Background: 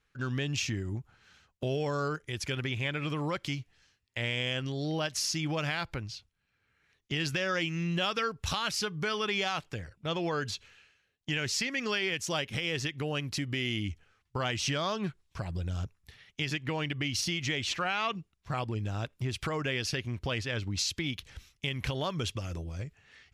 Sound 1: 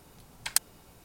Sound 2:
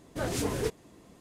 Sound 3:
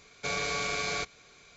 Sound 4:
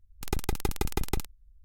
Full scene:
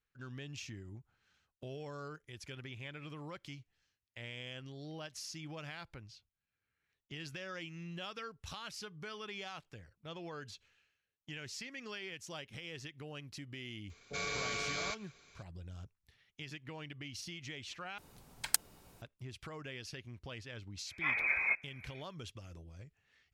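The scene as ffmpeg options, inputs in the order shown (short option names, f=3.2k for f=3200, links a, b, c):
-filter_complex "[0:a]volume=-14dB[a];[3:a]acrossover=split=660[b][c];[c]adelay=30[d];[b][d]amix=inputs=2:normalize=0[e];[2:a]lowpass=f=2.2k:t=q:w=0.5098,lowpass=f=2.2k:t=q:w=0.6013,lowpass=f=2.2k:t=q:w=0.9,lowpass=f=2.2k:t=q:w=2.563,afreqshift=-2600[f];[a]asplit=2[g][h];[g]atrim=end=17.984[i];[1:a]atrim=end=1.04,asetpts=PTS-STARTPTS,volume=-5dB[j];[h]atrim=start=19.016[k];[e]atrim=end=1.56,asetpts=PTS-STARTPTS,volume=-6dB,afade=t=in:d=0.004:c=hsin,afade=t=out:st=1.556:d=0.004:c=hsin,adelay=13870[l];[f]atrim=end=1.2,asetpts=PTS-STARTPTS,volume=-2dB,afade=t=in:d=0.05,afade=t=out:st=1.15:d=0.05,adelay=20850[m];[i][j]acrossfade=d=0.004:c1=hsin:c2=hsin[n];[n][k]acrossfade=d=0.004:c1=hsin:c2=hsin[o];[o][l][m]amix=inputs=3:normalize=0"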